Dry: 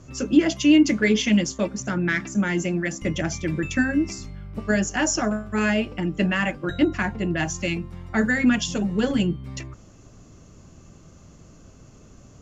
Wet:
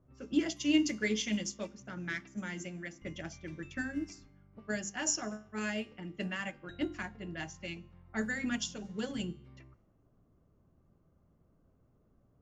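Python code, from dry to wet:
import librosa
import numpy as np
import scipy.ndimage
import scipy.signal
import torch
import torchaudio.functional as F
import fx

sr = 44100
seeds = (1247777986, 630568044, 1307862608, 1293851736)

y = fx.notch(x, sr, hz=2600.0, q=25.0)
y = fx.comb_fb(y, sr, f0_hz=72.0, decay_s=1.1, harmonics='all', damping=0.0, mix_pct=40)
y = fx.env_lowpass(y, sr, base_hz=980.0, full_db=-21.0)
y = fx.high_shelf(y, sr, hz=3500.0, db=9.5)
y = fx.hum_notches(y, sr, base_hz=50, count=7)
y = fx.upward_expand(y, sr, threshold_db=-33.0, expansion=1.5)
y = F.gain(torch.from_numpy(y), -6.5).numpy()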